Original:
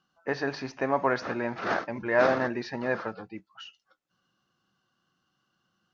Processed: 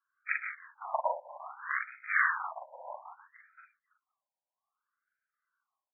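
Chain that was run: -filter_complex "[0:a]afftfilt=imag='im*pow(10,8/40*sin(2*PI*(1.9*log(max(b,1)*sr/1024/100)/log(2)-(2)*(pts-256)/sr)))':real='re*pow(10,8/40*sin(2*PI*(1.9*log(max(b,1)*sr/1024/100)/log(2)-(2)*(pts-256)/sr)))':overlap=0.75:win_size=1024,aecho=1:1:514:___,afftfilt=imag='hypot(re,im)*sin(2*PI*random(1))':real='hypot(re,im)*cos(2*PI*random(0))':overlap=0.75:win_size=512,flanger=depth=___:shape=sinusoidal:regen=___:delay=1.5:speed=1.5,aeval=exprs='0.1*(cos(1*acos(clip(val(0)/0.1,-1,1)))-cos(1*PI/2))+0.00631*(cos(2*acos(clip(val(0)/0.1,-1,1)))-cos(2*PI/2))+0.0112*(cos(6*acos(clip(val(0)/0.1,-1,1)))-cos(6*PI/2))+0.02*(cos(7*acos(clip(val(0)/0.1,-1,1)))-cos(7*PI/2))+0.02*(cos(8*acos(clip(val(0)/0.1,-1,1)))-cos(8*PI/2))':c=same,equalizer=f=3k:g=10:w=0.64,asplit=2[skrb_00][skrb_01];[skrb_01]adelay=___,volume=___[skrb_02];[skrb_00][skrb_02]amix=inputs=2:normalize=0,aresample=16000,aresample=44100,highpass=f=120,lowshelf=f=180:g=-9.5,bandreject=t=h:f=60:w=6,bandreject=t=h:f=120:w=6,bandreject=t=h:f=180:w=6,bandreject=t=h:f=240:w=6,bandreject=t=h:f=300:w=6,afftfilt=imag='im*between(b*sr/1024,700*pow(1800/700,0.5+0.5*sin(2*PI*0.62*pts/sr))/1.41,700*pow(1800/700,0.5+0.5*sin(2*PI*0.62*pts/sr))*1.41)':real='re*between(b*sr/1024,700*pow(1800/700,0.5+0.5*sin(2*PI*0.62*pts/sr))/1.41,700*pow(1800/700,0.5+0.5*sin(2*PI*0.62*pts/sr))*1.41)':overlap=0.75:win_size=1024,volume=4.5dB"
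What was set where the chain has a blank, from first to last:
0.0841, 6.1, -48, 42, -3dB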